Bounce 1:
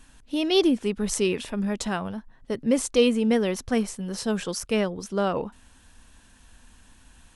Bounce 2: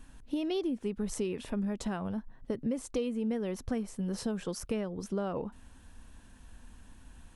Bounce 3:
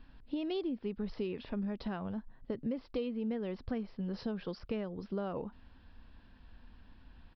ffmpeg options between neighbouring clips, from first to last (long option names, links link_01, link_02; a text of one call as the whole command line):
ffmpeg -i in.wav -af "lowshelf=frequency=460:gain=4,acompressor=threshold=-28dB:ratio=6,equalizer=frequency=5300:width=0.34:gain=-5.5,volume=-2dB" out.wav
ffmpeg -i in.wav -af "aresample=11025,aresample=44100,volume=-3.5dB" out.wav